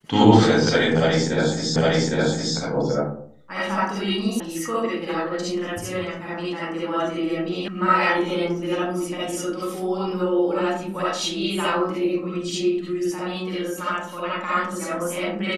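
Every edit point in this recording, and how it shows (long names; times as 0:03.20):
0:01.76: the same again, the last 0.81 s
0:04.40: cut off before it has died away
0:07.68: cut off before it has died away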